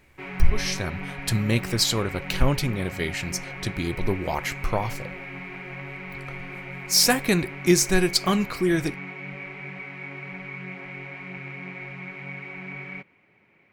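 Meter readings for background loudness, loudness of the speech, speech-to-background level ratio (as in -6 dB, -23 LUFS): -36.0 LUFS, -24.5 LUFS, 11.5 dB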